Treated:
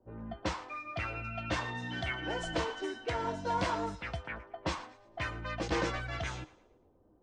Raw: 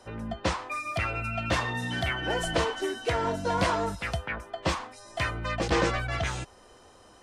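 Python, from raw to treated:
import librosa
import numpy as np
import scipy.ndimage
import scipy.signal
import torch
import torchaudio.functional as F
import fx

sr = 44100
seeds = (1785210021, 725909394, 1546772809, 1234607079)

y = scipy.signal.sosfilt(scipy.signal.butter(4, 7800.0, 'lowpass', fs=sr, output='sos'), x)
y = fx.comb_fb(y, sr, f0_hz=310.0, decay_s=0.15, harmonics='odd', damping=0.0, mix_pct=60)
y = fx.env_lowpass(y, sr, base_hz=360.0, full_db=-32.0)
y = fx.echo_thinned(y, sr, ms=113, feedback_pct=37, hz=420.0, wet_db=-18.5)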